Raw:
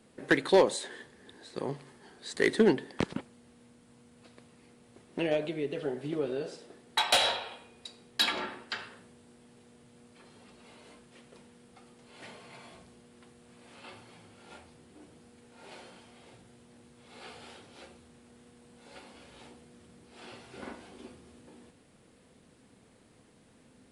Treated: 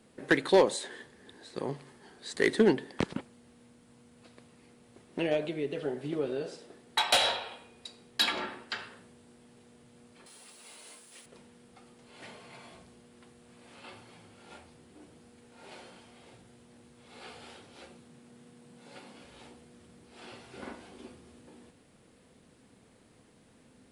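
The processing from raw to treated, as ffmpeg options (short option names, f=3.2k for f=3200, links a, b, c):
-filter_complex "[0:a]asettb=1/sr,asplit=3[a][b][c];[a]atrim=end=10.264[d];[b]atrim=start=10.26:end=11.26,asetpts=PTS-STARTPTS,afade=t=in:d=0.004:c=qsin,afade=t=out:st=0.996:d=0.004:c=qsin,aemphasis=mode=production:type=riaa[e];[c]atrim=start=11.256[f];[d][e]acrossfade=d=0.004:c1=hsin:c2=qsin[g];[g][f]acrossfade=d=0.004:c1=qsin:c2=hsin,asettb=1/sr,asplit=3[h][i][j];[h]atrim=end=17.904[k];[i]atrim=start=17.9:end=19.25,asetpts=PTS-STARTPTS,afade=t=in:d=0.004:c=qsin,afade=t=out:st=1.346:d=0.004:c=qsin,highpass=f=140:t=q:w=1.7[l];[j]atrim=start=19.246[m];[k][l]acrossfade=d=0.004:c1=hsin:c2=qsin[n];[n][m]acrossfade=d=0.004:c1=qsin:c2=hsin"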